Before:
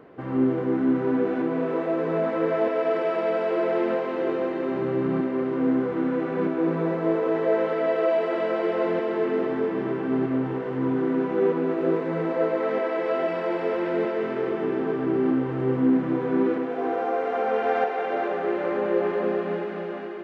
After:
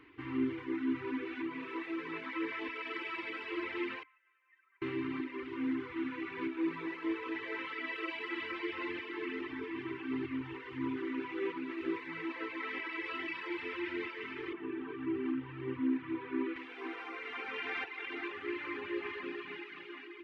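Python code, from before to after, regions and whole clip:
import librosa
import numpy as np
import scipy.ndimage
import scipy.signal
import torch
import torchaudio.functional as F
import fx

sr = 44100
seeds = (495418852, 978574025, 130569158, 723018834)

y = fx.chain(x, sr, fx.spec_expand(power=1.8),
    fx.highpass(hz=1400.0, slope=24), at=(4.03, 4.82))
y = fx.chain(y, sr, fx.highpass(hz=87.0, slope=12),
    fx.air_absorb(metres=250.0),
    fx.notch(hz=2100.0, q=25.0), at=(14.53, 16.56))
y = fx.band_shelf(y, sr, hz=1000.0, db=-14.5, octaves=1.7)
y = fx.dereverb_blind(y, sr, rt60_s=1.7)
y = fx.curve_eq(y, sr, hz=(100.0, 200.0, 290.0, 570.0, 970.0, 2500.0, 6700.0), db=(0, -26, 0, -23, 10, 8, -4))
y = y * librosa.db_to_amplitude(-2.5)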